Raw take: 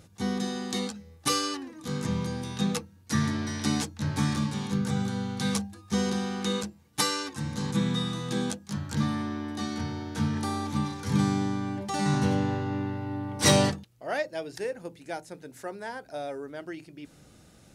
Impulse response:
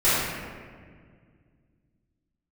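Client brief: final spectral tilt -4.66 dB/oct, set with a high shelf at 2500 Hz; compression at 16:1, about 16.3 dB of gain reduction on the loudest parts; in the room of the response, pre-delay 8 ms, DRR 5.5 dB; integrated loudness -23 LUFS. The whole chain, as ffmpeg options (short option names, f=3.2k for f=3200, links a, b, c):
-filter_complex "[0:a]highshelf=f=2.5k:g=3,acompressor=threshold=-31dB:ratio=16,asplit=2[a][b];[1:a]atrim=start_sample=2205,adelay=8[c];[b][c]afir=irnorm=-1:irlink=0,volume=-24dB[d];[a][d]amix=inputs=2:normalize=0,volume=12dB"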